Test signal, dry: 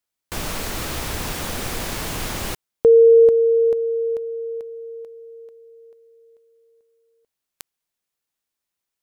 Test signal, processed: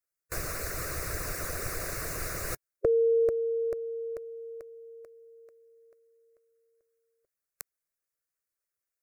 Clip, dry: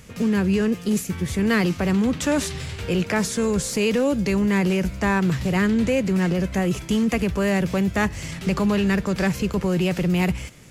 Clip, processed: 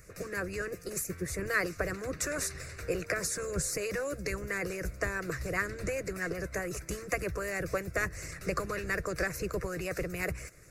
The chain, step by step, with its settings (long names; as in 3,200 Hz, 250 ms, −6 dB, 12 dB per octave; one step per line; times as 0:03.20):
phaser with its sweep stopped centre 870 Hz, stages 6
harmonic and percussive parts rebalanced harmonic −13 dB